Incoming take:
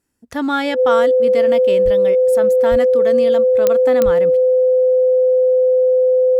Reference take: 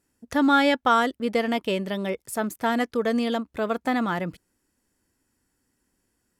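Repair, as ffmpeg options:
ffmpeg -i in.wav -filter_complex "[0:a]adeclick=threshold=4,bandreject=frequency=510:width=30,asplit=3[link_01][link_02][link_03];[link_01]afade=type=out:start_time=1.84:duration=0.02[link_04];[link_02]highpass=frequency=140:width=0.5412,highpass=frequency=140:width=1.3066,afade=type=in:start_time=1.84:duration=0.02,afade=type=out:start_time=1.96:duration=0.02[link_05];[link_03]afade=type=in:start_time=1.96:duration=0.02[link_06];[link_04][link_05][link_06]amix=inputs=3:normalize=0,asplit=3[link_07][link_08][link_09];[link_07]afade=type=out:start_time=2.7:duration=0.02[link_10];[link_08]highpass=frequency=140:width=0.5412,highpass=frequency=140:width=1.3066,afade=type=in:start_time=2.7:duration=0.02,afade=type=out:start_time=2.82:duration=0.02[link_11];[link_09]afade=type=in:start_time=2.82:duration=0.02[link_12];[link_10][link_11][link_12]amix=inputs=3:normalize=0,asplit=3[link_13][link_14][link_15];[link_13]afade=type=out:start_time=4.04:duration=0.02[link_16];[link_14]highpass=frequency=140:width=0.5412,highpass=frequency=140:width=1.3066,afade=type=in:start_time=4.04:duration=0.02,afade=type=out:start_time=4.16:duration=0.02[link_17];[link_15]afade=type=in:start_time=4.16:duration=0.02[link_18];[link_16][link_17][link_18]amix=inputs=3:normalize=0" out.wav

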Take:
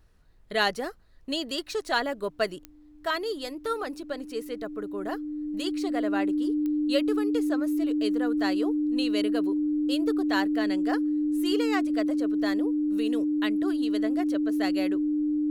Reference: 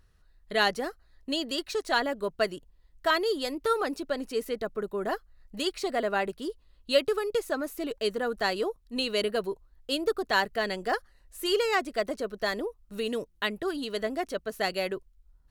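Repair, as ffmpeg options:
ffmpeg -i in.wav -af "adeclick=threshold=4,bandreject=frequency=300:width=30,agate=range=-21dB:threshold=-39dB,asetnsamples=nb_out_samples=441:pad=0,asendcmd='2.71 volume volume 3.5dB',volume=0dB" out.wav

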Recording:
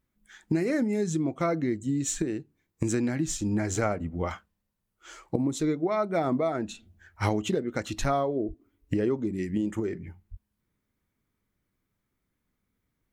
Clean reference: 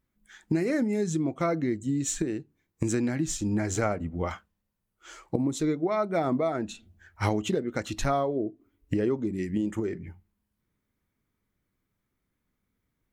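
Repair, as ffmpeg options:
ffmpeg -i in.wav -filter_complex "[0:a]asplit=3[link_01][link_02][link_03];[link_01]afade=type=out:start_time=8.47:duration=0.02[link_04];[link_02]highpass=frequency=140:width=0.5412,highpass=frequency=140:width=1.3066,afade=type=in:start_time=8.47:duration=0.02,afade=type=out:start_time=8.59:duration=0.02[link_05];[link_03]afade=type=in:start_time=8.59:duration=0.02[link_06];[link_04][link_05][link_06]amix=inputs=3:normalize=0,asplit=3[link_07][link_08][link_09];[link_07]afade=type=out:start_time=10.3:duration=0.02[link_10];[link_08]highpass=frequency=140:width=0.5412,highpass=frequency=140:width=1.3066,afade=type=in:start_time=10.3:duration=0.02,afade=type=out:start_time=10.42:duration=0.02[link_11];[link_09]afade=type=in:start_time=10.42:duration=0.02[link_12];[link_10][link_11][link_12]amix=inputs=3:normalize=0" out.wav

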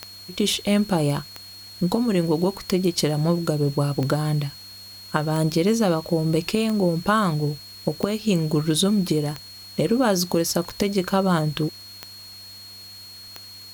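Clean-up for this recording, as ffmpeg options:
ffmpeg -i in.wav -af "adeclick=threshold=4,bandreject=frequency=97.8:width_type=h:width=4,bandreject=frequency=195.6:width_type=h:width=4,bandreject=frequency=293.4:width_type=h:width=4,bandreject=frequency=4300:width=30,afwtdn=0.004" out.wav

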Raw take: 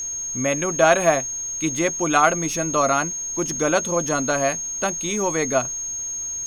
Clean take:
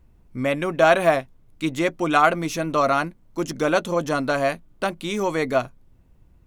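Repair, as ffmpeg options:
ffmpeg -i in.wav -af "bandreject=frequency=6500:width=30,agate=range=-21dB:threshold=-21dB" out.wav

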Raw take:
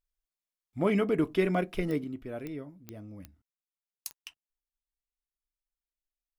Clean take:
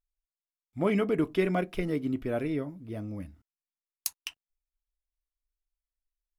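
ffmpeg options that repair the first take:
ffmpeg -i in.wav -af "adeclick=threshold=4,asetnsamples=nb_out_samples=441:pad=0,asendcmd='2.04 volume volume 8dB',volume=0dB" out.wav

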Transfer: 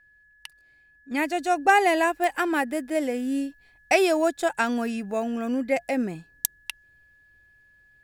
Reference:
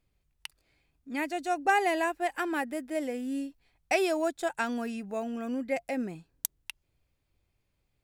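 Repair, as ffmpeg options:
ffmpeg -i in.wav -af "adeclick=threshold=4,bandreject=frequency=1700:width=30,asetnsamples=nb_out_samples=441:pad=0,asendcmd='1.11 volume volume -6.5dB',volume=0dB" out.wav

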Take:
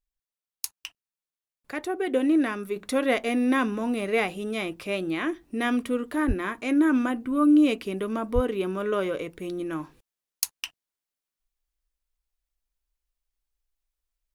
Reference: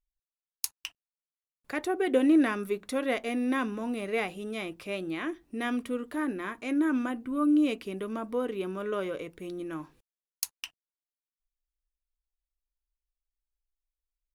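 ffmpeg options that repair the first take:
ffmpeg -i in.wav -filter_complex "[0:a]asplit=3[link_01][link_02][link_03];[link_01]afade=type=out:start_time=6.27:duration=0.02[link_04];[link_02]highpass=frequency=140:width=0.5412,highpass=frequency=140:width=1.3066,afade=type=in:start_time=6.27:duration=0.02,afade=type=out:start_time=6.39:duration=0.02[link_05];[link_03]afade=type=in:start_time=6.39:duration=0.02[link_06];[link_04][link_05][link_06]amix=inputs=3:normalize=0,asplit=3[link_07][link_08][link_09];[link_07]afade=type=out:start_time=8.34:duration=0.02[link_10];[link_08]highpass=frequency=140:width=0.5412,highpass=frequency=140:width=1.3066,afade=type=in:start_time=8.34:duration=0.02,afade=type=out:start_time=8.46:duration=0.02[link_11];[link_09]afade=type=in:start_time=8.46:duration=0.02[link_12];[link_10][link_11][link_12]amix=inputs=3:normalize=0,asetnsamples=nb_out_samples=441:pad=0,asendcmd='2.76 volume volume -5.5dB',volume=0dB" out.wav

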